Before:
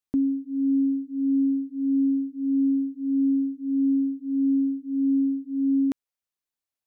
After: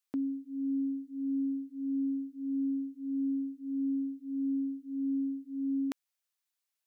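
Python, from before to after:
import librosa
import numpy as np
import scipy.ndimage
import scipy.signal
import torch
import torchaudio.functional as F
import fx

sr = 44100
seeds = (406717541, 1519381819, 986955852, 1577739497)

y = fx.highpass(x, sr, hz=1300.0, slope=6)
y = y * 10.0 ** (4.0 / 20.0)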